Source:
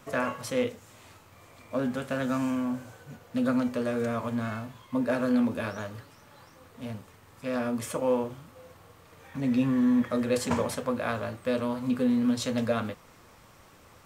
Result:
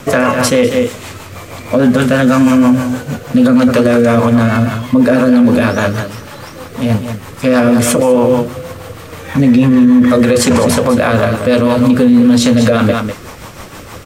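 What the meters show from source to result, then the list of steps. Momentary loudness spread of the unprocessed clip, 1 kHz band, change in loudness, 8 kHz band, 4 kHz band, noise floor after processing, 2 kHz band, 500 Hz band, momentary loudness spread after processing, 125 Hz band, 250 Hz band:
15 LU, +17.5 dB, +18.0 dB, +21.0 dB, +19.5 dB, −32 dBFS, +18.5 dB, +18.5 dB, 20 LU, +21.5 dB, +18.5 dB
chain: single-tap delay 197 ms −10 dB
rotating-speaker cabinet horn 6.3 Hz
boost into a limiter +27 dB
level −1 dB

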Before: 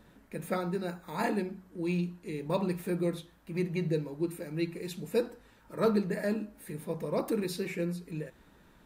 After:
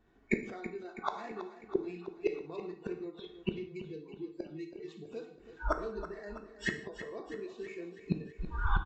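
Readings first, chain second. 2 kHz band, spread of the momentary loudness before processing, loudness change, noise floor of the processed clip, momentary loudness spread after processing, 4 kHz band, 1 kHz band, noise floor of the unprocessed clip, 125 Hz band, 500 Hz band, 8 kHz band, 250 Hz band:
+1.0 dB, 10 LU, −6.0 dB, −57 dBFS, 10 LU, −4.5 dB, −1.5 dB, −61 dBFS, −7.0 dB, −6.0 dB, −11.0 dB, −7.5 dB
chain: running median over 9 samples
camcorder AGC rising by 26 dB per second
noise reduction from a noise print of the clip's start 30 dB
comb filter 2.7 ms, depth 55%
in parallel at −2.5 dB: brickwall limiter −24 dBFS, peak gain reduction 8.5 dB
on the sum: gate with flip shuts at −30 dBFS, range −31 dB
on a send: repeating echo 326 ms, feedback 58%, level −12.5 dB
on the sum: reverb whose tail is shaped and stops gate 210 ms falling, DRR 6.5 dB
downsampling to 16,000 Hz
level +12.5 dB

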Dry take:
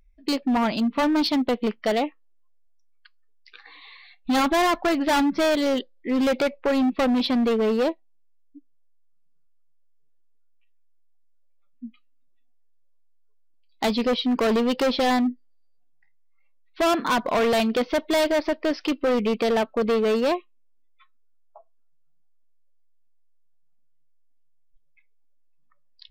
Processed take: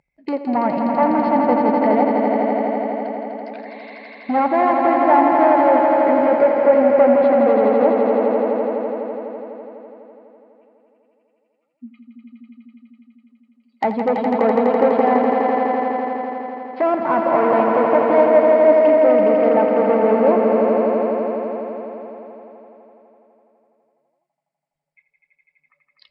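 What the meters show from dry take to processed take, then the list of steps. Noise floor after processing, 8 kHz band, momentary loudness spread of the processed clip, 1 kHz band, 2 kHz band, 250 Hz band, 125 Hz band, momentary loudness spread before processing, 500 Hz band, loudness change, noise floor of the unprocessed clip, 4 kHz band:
−73 dBFS, below −25 dB, 16 LU, +10.5 dB, +2.0 dB, +4.0 dB, can't be measured, 5 LU, +10.5 dB, +6.5 dB, −57 dBFS, below −10 dB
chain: treble cut that deepens with the level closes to 1,300 Hz, closed at −24 dBFS
loudspeaker in its box 140–8,900 Hz, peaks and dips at 150 Hz +7 dB, 570 Hz +7 dB, 850 Hz +9 dB, 2,100 Hz +8 dB, 3,500 Hz −9 dB, 6,100 Hz −8 dB
echo that builds up and dies away 83 ms, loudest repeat 5, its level −6 dB

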